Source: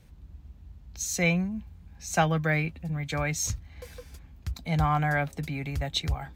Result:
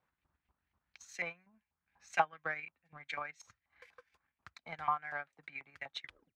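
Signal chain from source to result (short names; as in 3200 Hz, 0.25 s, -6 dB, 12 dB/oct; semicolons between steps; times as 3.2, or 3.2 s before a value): tape stop at the end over 0.35 s; LFO band-pass saw up 4.1 Hz 970–2400 Hz; transient shaper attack +9 dB, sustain -10 dB; gain -7 dB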